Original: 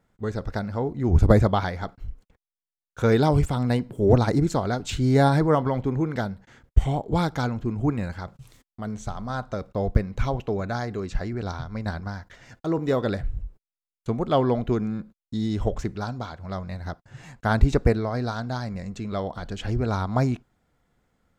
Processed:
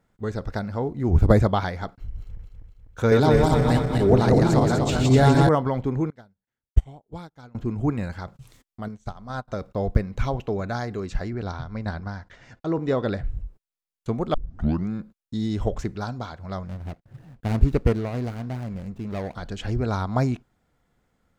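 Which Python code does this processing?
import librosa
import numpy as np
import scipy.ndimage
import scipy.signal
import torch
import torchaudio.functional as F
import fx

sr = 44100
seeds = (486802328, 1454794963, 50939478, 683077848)

y = fx.median_filter(x, sr, points=9, at=(0.82, 1.24))
y = fx.reverse_delay_fb(y, sr, ms=124, feedback_pct=71, wet_db=-1.5, at=(2.0, 5.49))
y = fx.upward_expand(y, sr, threshold_db=-36.0, expansion=2.5, at=(6.1, 7.55))
y = fx.upward_expand(y, sr, threshold_db=-43.0, expansion=2.5, at=(8.88, 9.48))
y = fx.air_absorb(y, sr, metres=68.0, at=(11.3, 13.28))
y = fx.median_filter(y, sr, points=41, at=(16.65, 19.35))
y = fx.edit(y, sr, fx.tape_start(start_s=14.34, length_s=0.55), tone=tone)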